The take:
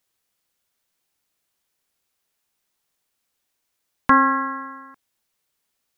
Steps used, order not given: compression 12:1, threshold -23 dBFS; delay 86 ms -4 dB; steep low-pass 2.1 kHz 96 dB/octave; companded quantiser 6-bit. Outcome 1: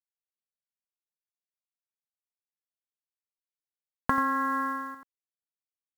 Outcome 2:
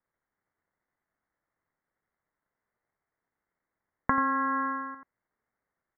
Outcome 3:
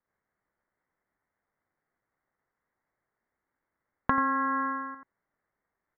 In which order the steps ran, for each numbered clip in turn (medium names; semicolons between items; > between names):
steep low-pass > companded quantiser > delay > compression; companded quantiser > delay > compression > steep low-pass; delay > companded quantiser > steep low-pass > compression